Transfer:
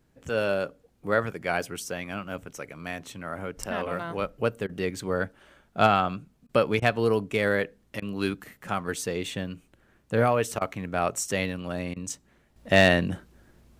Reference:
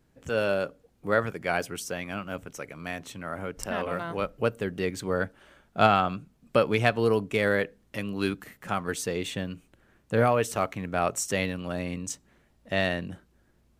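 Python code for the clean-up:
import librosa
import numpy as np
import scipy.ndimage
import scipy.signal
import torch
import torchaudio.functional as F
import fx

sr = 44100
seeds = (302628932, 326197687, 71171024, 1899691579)

y = fx.fix_declip(x, sr, threshold_db=-6.0)
y = fx.fix_interpolate(y, sr, at_s=(4.67, 6.47, 6.8, 8.0, 10.59, 11.94), length_ms=20.0)
y = fx.gain(y, sr, db=fx.steps((0.0, 0.0), (12.56, -8.5)))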